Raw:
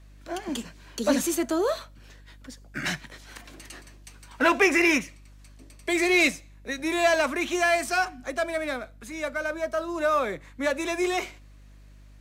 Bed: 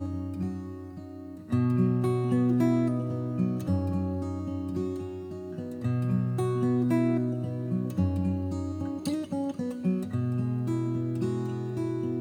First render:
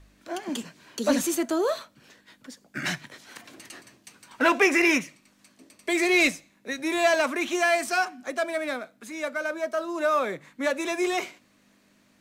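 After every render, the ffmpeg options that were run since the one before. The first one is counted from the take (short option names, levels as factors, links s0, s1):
-af "bandreject=f=50:t=h:w=4,bandreject=f=100:t=h:w=4,bandreject=f=150:t=h:w=4"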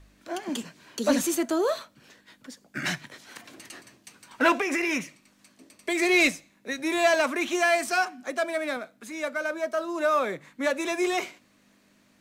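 -filter_complex "[0:a]asettb=1/sr,asplit=3[s0][s1][s2];[s0]atrim=end=4.574[s3];[s1]atrim=start=4.57:end=6.02,asetpts=PTS-STARTPTS,afade=t=in:d=0.004:c=qsin,afade=t=out:st=1.446:d=0.004:c=qsin,acompressor=threshold=0.0794:ratio=12:attack=3.2:release=140:knee=1:detection=peak[s4];[s2]atrim=start=6.016[s5];[s3][s4]acrossfade=d=0.004:c1=hsin:c2=qsin[s6];[s6][s5]acrossfade=d=0.004:c1=qsin:c2=hsin,asettb=1/sr,asplit=3[s7][s8][s9];[s7]atrim=end=7.914[s10];[s8]atrim=start=7.91:end=8.77,asetpts=PTS-STARTPTS,afade=t=in:d=0.004:c=qsin,afade=t=out:st=0.856:d=0.004:c=qsin,highpass=100[s11];[s9]atrim=start=8.766[s12];[s10][s11]acrossfade=d=0.004:c1=hsin:c2=qsin[s13];[s13][s12]acrossfade=d=0.004:c1=qsin:c2=hsin"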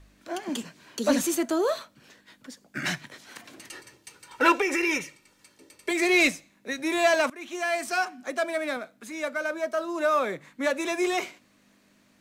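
-filter_complex "[0:a]asettb=1/sr,asplit=3[s0][s1][s2];[s0]atrim=end=3.704[s3];[s1]atrim=start=3.7:end=5.91,asetpts=PTS-STARTPTS,afade=t=in:d=0.004:c=qsin,afade=t=out:st=2.206:d=0.004:c=qsin,aecho=1:1:2.2:0.65,atrim=end_sample=97461[s4];[s2]atrim=start=5.906[s5];[s3][s4]acrossfade=d=0.004:c1=hsin:c2=qsin[s6];[s6][s5]acrossfade=d=0.004:c1=qsin:c2=hsin,asplit=2[s7][s8];[s7]atrim=end=7.3,asetpts=PTS-STARTPTS,afade=t=out:st=7.296:d=0.004:c=hsin:silence=0.105925[s9];[s8]atrim=start=7.3,asetpts=PTS-STARTPTS,afade=t=in:d=1.16:c=qsin:silence=0.105925[s10];[s9][s10]concat=n=2:v=0:a=1"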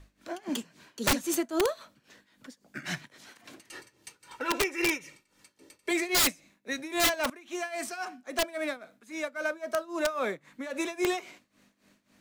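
-af "tremolo=f=3.7:d=0.84,aeval=exprs='(mod(7.94*val(0)+1,2)-1)/7.94':c=same"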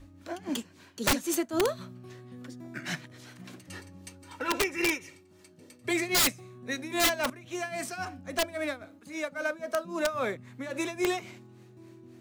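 -filter_complex "[1:a]volume=0.0891[s0];[0:a][s0]amix=inputs=2:normalize=0"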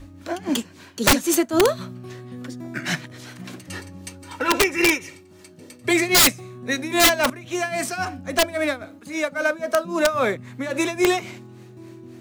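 -af "volume=2.99"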